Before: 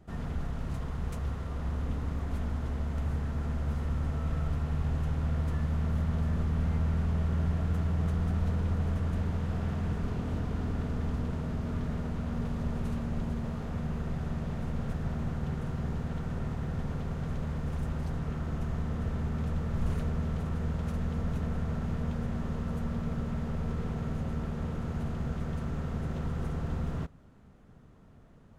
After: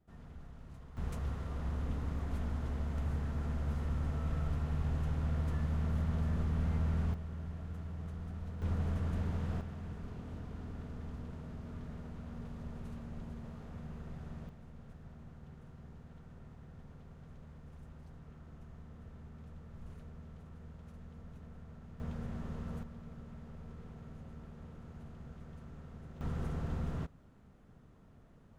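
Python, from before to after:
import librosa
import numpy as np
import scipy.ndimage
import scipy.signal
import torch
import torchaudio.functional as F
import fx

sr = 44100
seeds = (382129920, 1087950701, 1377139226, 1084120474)

y = fx.gain(x, sr, db=fx.steps((0.0, -16.5), (0.97, -4.0), (7.14, -13.5), (8.62, -4.5), (9.61, -12.0), (14.49, -19.0), (22.0, -8.0), (22.83, -16.0), (26.21, -4.0)))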